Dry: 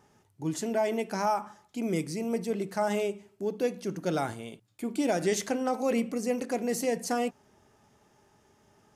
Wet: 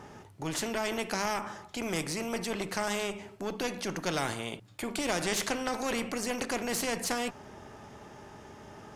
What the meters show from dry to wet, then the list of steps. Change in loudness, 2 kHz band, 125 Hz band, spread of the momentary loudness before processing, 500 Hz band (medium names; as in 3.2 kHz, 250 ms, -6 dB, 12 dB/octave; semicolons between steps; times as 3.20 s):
-2.0 dB, +4.5 dB, -2.5 dB, 7 LU, -5.0 dB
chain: single-diode clipper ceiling -21 dBFS; treble shelf 5.2 kHz -11.5 dB; spectrum-flattening compressor 2:1; trim +3.5 dB